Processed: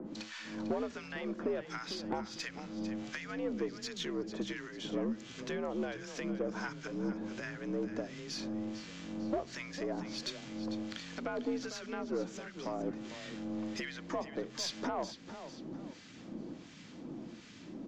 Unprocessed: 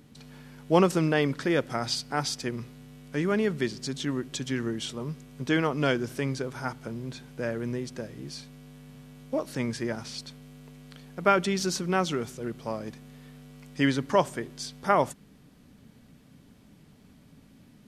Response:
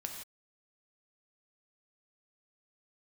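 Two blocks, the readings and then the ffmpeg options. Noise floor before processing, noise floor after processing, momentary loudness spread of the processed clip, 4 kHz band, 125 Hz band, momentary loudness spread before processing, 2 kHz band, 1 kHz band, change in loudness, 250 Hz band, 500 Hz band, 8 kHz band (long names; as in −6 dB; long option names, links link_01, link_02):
−56 dBFS, −52 dBFS, 10 LU, −7.5 dB, −14.5 dB, 23 LU, −9.5 dB, −13.0 dB, −10.5 dB, −7.5 dB, −9.5 dB, −9.0 dB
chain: -filter_complex "[0:a]highpass=69,acrossover=split=3000[link_01][link_02];[link_02]acompressor=threshold=-44dB:ratio=4:attack=1:release=60[link_03];[link_01][link_03]amix=inputs=2:normalize=0,alimiter=limit=-15.5dB:level=0:latency=1:release=215,acompressor=threshold=-41dB:ratio=8,acrossover=split=1100[link_04][link_05];[link_04]aeval=exprs='val(0)*(1-1/2+1/2*cos(2*PI*1.4*n/s))':channel_layout=same[link_06];[link_05]aeval=exprs='val(0)*(1-1/2-1/2*cos(2*PI*1.4*n/s))':channel_layout=same[link_07];[link_06][link_07]amix=inputs=2:normalize=0,asoftclip=type=tanh:threshold=-37.5dB,aresample=16000,aresample=44100,afreqshift=69,asplit=5[link_08][link_09][link_10][link_11][link_12];[link_09]adelay=449,afreqshift=-44,volume=-11.5dB[link_13];[link_10]adelay=898,afreqshift=-88,volume=-20.1dB[link_14];[link_11]adelay=1347,afreqshift=-132,volume=-28.8dB[link_15];[link_12]adelay=1796,afreqshift=-176,volume=-37.4dB[link_16];[link_08][link_13][link_14][link_15][link_16]amix=inputs=5:normalize=0,aeval=exprs='0.02*(cos(1*acos(clip(val(0)/0.02,-1,1)))-cos(1*PI/2))+0.000398*(cos(8*acos(clip(val(0)/0.02,-1,1)))-cos(8*PI/2))':channel_layout=same,volume=12dB"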